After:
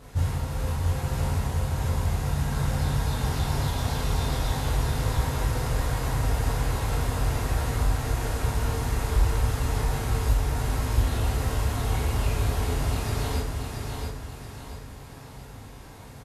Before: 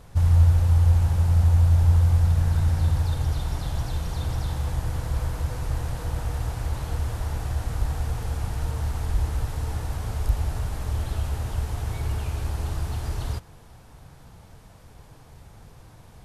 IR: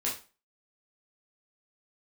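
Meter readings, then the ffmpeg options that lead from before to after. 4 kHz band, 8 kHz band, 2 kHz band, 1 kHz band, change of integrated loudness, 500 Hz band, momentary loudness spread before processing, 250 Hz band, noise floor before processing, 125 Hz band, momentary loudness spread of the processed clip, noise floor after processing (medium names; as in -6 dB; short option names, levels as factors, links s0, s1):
+6.0 dB, +6.0 dB, +6.5 dB, +5.5 dB, -2.5 dB, +6.5 dB, 12 LU, +4.5 dB, -49 dBFS, -3.5 dB, 14 LU, -43 dBFS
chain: -filter_complex "[0:a]alimiter=limit=0.2:level=0:latency=1:release=421,highpass=44,aecho=1:1:680|1360|2040|2720|3400:0.596|0.244|0.1|0.0411|0.0168[s0];[1:a]atrim=start_sample=2205[s1];[s0][s1]afir=irnorm=-1:irlink=0"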